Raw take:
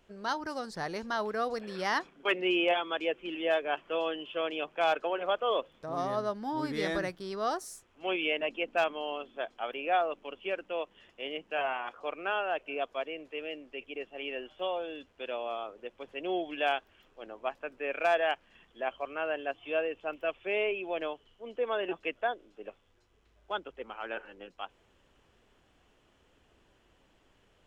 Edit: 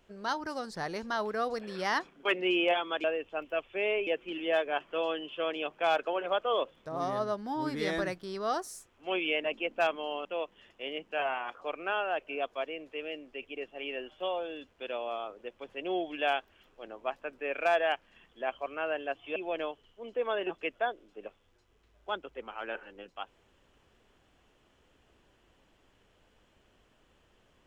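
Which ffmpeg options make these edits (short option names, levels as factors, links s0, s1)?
-filter_complex "[0:a]asplit=5[s0][s1][s2][s3][s4];[s0]atrim=end=3.042[s5];[s1]atrim=start=19.748:end=20.782[s6];[s2]atrim=start=3.038:end=9.222[s7];[s3]atrim=start=10.638:end=19.752[s8];[s4]atrim=start=20.778[s9];[s5][s6]acrossfade=d=0.004:c1=hsin:c2=hsin[s10];[s10][s7]acrossfade=d=0.004:c1=hsin:c2=hsin[s11];[s11][s8]acrossfade=d=0.004:c1=hsin:c2=hsin[s12];[s12][s9]acrossfade=d=0.004:c1=hsin:c2=hsin"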